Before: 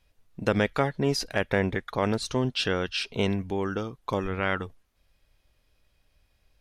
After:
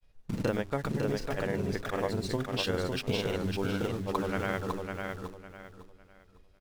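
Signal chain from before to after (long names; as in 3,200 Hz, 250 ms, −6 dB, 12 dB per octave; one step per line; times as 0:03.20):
spectral tilt −2 dB per octave
mains-hum notches 50/100/150/200/250/300/350/400 Hz
in parallel at −6 dB: bit reduction 6 bits
on the sum: downward compressor 6 to 1, threshold −26 dBFS, peak gain reduction 13 dB
granular cloud
bass and treble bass −3 dB, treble +3 dB
on a send: repeating echo 554 ms, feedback 28%, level −4.5 dB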